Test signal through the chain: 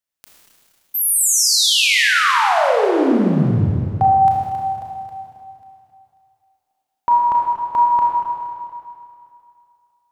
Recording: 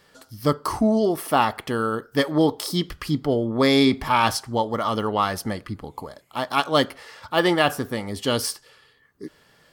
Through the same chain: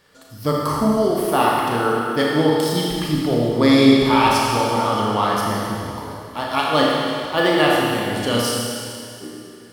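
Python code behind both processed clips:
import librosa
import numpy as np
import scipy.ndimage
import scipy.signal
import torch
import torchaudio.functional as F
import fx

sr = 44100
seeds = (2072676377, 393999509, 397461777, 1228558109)

y = fx.rev_schroeder(x, sr, rt60_s=2.5, comb_ms=26, drr_db=-3.5)
y = y * librosa.db_to_amplitude(-1.0)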